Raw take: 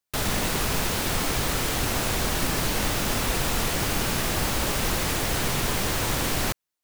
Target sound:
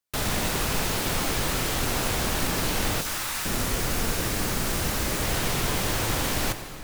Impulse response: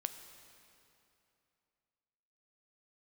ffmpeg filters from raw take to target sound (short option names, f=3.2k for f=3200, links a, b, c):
-filter_complex "[0:a]asettb=1/sr,asplit=3[a][b][c];[a]atrim=end=3.014[d];[b]atrim=start=3.01:end=5.22,asetpts=PTS-STARTPTS,afade=t=in:d=0.004:c=qsin,afade=t=out:st=2.206:d=0.004:c=qsin,acrossover=split=840|3100[e][f][g];[f]adelay=40[h];[e]adelay=440[i];[i][h][g]amix=inputs=3:normalize=0,atrim=end_sample=97461[j];[c]atrim=start=5.216[k];[d][j]acrossfade=d=0.004:c1=hsin:c2=qsin[l];[l][k]acrossfade=d=0.004:c1=qsin:c2=hsin[m];[1:a]atrim=start_sample=2205,asetrate=42777,aresample=44100[n];[m][n]afir=irnorm=-1:irlink=0"